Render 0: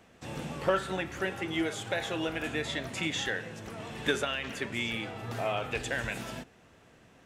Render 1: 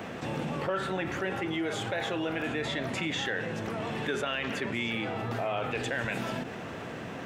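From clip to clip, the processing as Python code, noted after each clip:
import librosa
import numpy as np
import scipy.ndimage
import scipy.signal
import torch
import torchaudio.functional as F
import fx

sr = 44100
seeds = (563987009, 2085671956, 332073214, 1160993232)

y = scipy.signal.sosfilt(scipy.signal.butter(2, 110.0, 'highpass', fs=sr, output='sos'), x)
y = fx.peak_eq(y, sr, hz=10000.0, db=-11.0, octaves=2.1)
y = fx.env_flatten(y, sr, amount_pct=70)
y = y * librosa.db_to_amplitude(-5.5)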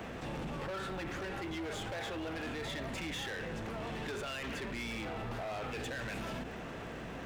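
y = fx.octave_divider(x, sr, octaves=2, level_db=-5.0)
y = fx.dmg_crackle(y, sr, seeds[0], per_s=240.0, level_db=-50.0)
y = np.clip(10.0 ** (32.0 / 20.0) * y, -1.0, 1.0) / 10.0 ** (32.0 / 20.0)
y = y * librosa.db_to_amplitude(-4.5)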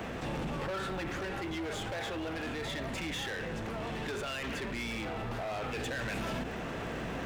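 y = fx.rider(x, sr, range_db=10, speed_s=2.0)
y = y * librosa.db_to_amplitude(3.0)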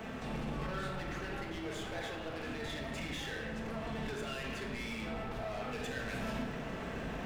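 y = fx.room_shoebox(x, sr, seeds[1], volume_m3=890.0, walls='mixed', distance_m=1.5)
y = y * librosa.db_to_amplitude(-6.5)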